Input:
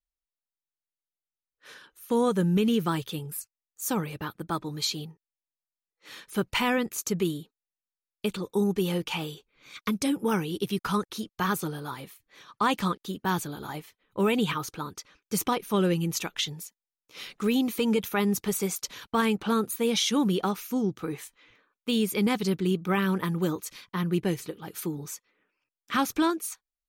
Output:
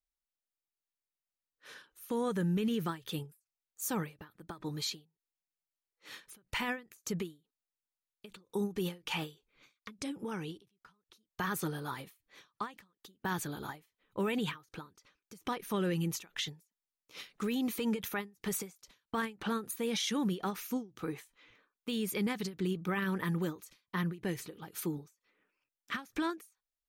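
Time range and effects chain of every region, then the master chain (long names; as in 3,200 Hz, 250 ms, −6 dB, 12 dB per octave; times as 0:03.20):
0:09.83–0:11.13: low-pass filter 9,000 Hz + downward compressor 3 to 1, threshold −34 dBFS
whole clip: dynamic equaliser 1,800 Hz, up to +7 dB, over −50 dBFS, Q 3.5; brickwall limiter −21.5 dBFS; every ending faded ahead of time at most 210 dB per second; level −3.5 dB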